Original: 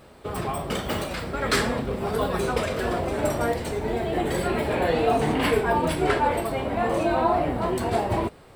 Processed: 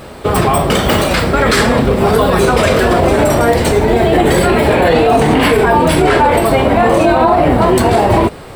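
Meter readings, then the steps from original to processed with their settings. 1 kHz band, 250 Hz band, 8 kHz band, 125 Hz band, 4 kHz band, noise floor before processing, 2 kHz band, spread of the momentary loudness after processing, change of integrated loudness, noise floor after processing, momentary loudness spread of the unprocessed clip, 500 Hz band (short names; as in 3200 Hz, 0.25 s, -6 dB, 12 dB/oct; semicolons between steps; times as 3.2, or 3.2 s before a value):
+13.5 dB, +14.5 dB, +14.0 dB, +15.0 dB, +13.5 dB, -49 dBFS, +13.5 dB, 2 LU, +14.0 dB, -31 dBFS, 7 LU, +14.0 dB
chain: maximiser +19 dB; gain -1 dB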